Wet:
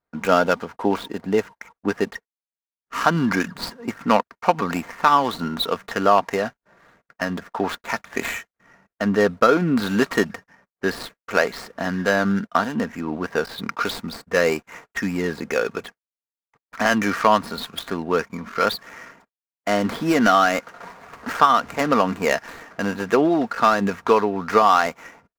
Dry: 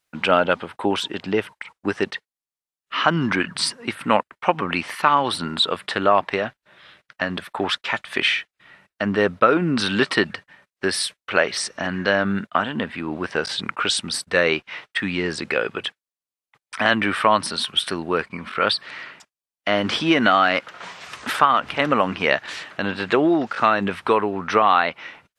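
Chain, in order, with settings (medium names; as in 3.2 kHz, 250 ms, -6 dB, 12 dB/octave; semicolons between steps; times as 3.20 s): median filter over 15 samples; comb 4.3 ms, depth 32%; tape noise reduction on one side only decoder only; trim +1 dB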